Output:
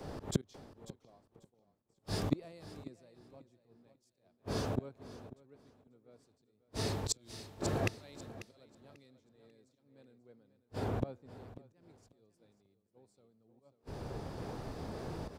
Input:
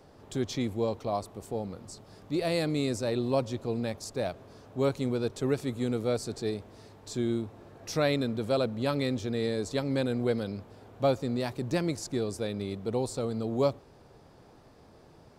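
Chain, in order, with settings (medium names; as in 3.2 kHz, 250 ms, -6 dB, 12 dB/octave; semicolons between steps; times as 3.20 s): bass shelf 390 Hz +3.5 dB; slow attack 108 ms; inverted gate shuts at -35 dBFS, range -37 dB; on a send: feedback delay 542 ms, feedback 40%, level -8.5 dB; on the sum: three bands expanded up and down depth 100%; trim +10 dB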